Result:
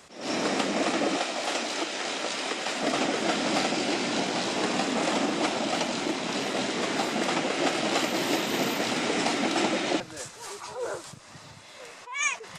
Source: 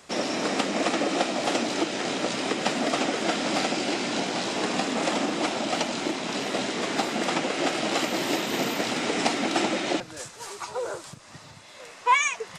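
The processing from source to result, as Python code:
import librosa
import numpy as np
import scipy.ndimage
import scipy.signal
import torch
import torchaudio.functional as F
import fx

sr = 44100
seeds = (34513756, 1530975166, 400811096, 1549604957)

y = fx.highpass(x, sr, hz=690.0, slope=6, at=(1.16, 2.83))
y = fx.attack_slew(y, sr, db_per_s=110.0)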